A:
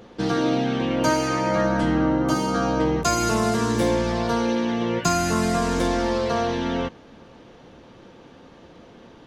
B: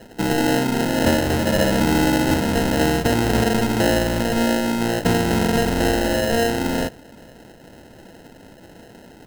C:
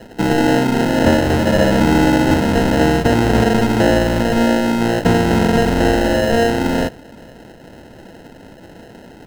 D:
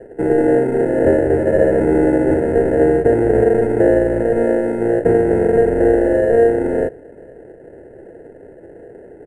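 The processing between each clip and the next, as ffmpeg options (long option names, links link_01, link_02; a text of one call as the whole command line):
ffmpeg -i in.wav -af "acrusher=samples=38:mix=1:aa=0.000001,volume=3dB" out.wav
ffmpeg -i in.wav -filter_complex "[0:a]highshelf=frequency=5500:gain=-7,acrossover=split=1400[link_01][link_02];[link_02]asoftclip=type=tanh:threshold=-20dB[link_03];[link_01][link_03]amix=inputs=2:normalize=0,volume=5dB" out.wav
ffmpeg -i in.wav -filter_complex "[0:a]firequalizer=gain_entry='entry(140,0);entry(210,-6);entry(400,14);entry(1100,-14);entry(1700,1);entry(3400,-27);entry(5500,-24);entry(9300,5);entry(13000,-14)':delay=0.05:min_phase=1,acrossover=split=2600[link_01][link_02];[link_02]adynamicsmooth=sensitivity=4:basefreq=7900[link_03];[link_01][link_03]amix=inputs=2:normalize=0,volume=-5.5dB" out.wav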